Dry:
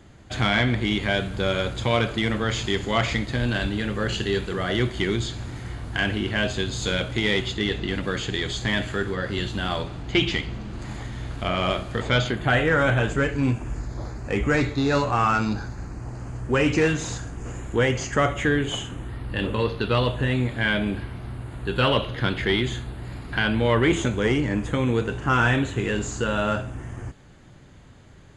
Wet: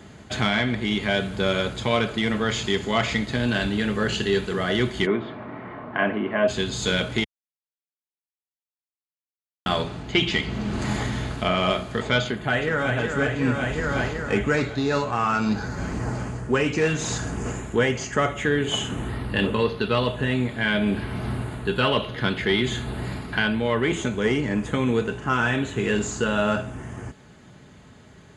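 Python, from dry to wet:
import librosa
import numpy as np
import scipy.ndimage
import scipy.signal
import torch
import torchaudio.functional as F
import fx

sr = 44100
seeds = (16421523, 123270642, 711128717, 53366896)

y = fx.cabinet(x, sr, low_hz=200.0, low_slope=12, high_hz=2200.0, hz=(280.0, 620.0, 1100.0, 1600.0), db=(3, 8, 8, -3), at=(5.05, 6.47), fade=0.02)
y = fx.echo_throw(y, sr, start_s=12.24, length_s=0.73, ms=370, feedback_pct=70, wet_db=-6.5)
y = fx.edit(y, sr, fx.silence(start_s=7.24, length_s=2.42), tone=tone)
y = scipy.signal.sosfilt(scipy.signal.butter(2, 80.0, 'highpass', fs=sr, output='sos'), y)
y = y + 0.32 * np.pad(y, (int(4.7 * sr / 1000.0), 0))[:len(y)]
y = fx.rider(y, sr, range_db=10, speed_s=0.5)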